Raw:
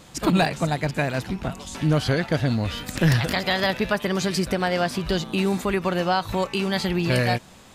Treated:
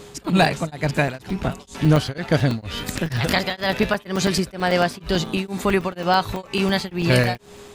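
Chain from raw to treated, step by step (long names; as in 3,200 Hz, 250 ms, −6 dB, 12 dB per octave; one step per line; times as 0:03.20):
steady tone 410 Hz −46 dBFS
regular buffer underruns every 0.11 s, samples 128, zero, from 0:00.97
tremolo along a rectified sine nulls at 2.1 Hz
level +5 dB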